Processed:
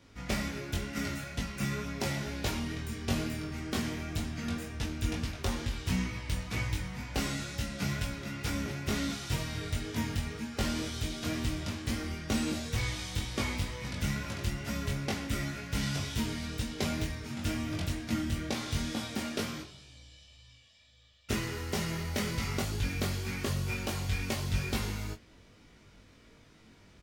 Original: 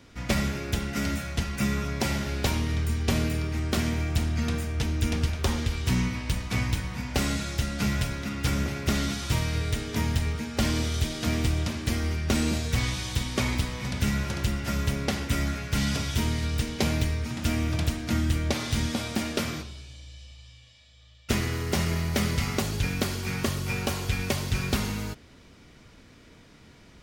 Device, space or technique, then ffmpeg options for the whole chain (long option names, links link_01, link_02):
double-tracked vocal: -filter_complex "[0:a]asplit=2[link_01][link_02];[link_02]adelay=22,volume=-8dB[link_03];[link_01][link_03]amix=inputs=2:normalize=0,flanger=delay=18:depth=2.6:speed=2.1,volume=-3dB"